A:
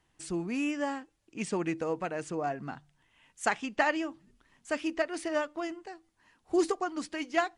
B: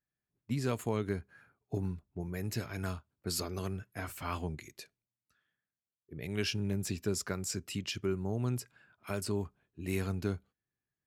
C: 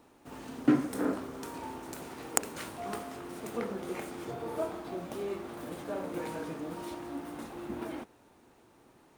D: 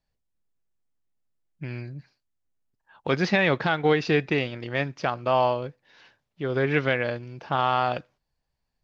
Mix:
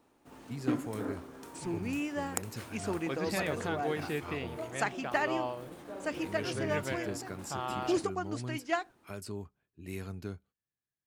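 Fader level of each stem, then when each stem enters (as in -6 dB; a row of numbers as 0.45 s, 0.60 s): -3.5 dB, -6.5 dB, -7.0 dB, -13.5 dB; 1.35 s, 0.00 s, 0.00 s, 0.00 s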